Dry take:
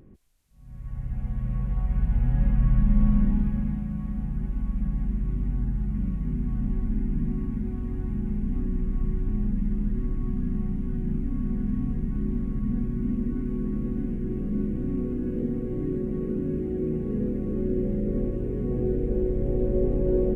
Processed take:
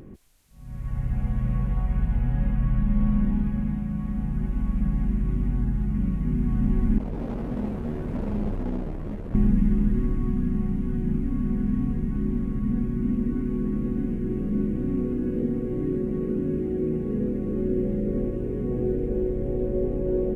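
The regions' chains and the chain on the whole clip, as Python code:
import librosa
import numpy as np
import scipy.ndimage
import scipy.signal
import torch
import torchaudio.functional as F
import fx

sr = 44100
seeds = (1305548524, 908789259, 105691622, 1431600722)

y = fx.chain(x, sr, fx.clip_hard(threshold_db=-31.5),
    fx.detune_double(cents=12), at=(6.98, 9.35))
y = fx.low_shelf(y, sr, hz=140.0, db=-5.0)
y = fx.rider(y, sr, range_db=10, speed_s=2.0)
y = y * 10.0 ** (3.5 / 20.0)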